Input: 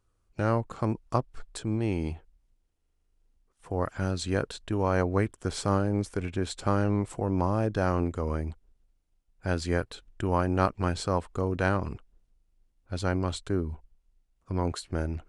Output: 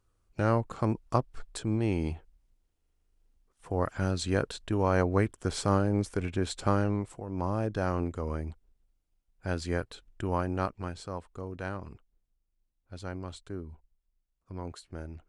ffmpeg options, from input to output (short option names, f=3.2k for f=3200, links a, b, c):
-af "volume=8dB,afade=t=out:st=6.69:d=0.57:silence=0.266073,afade=t=in:st=7.26:d=0.23:silence=0.398107,afade=t=out:st=10.33:d=0.63:silence=0.446684"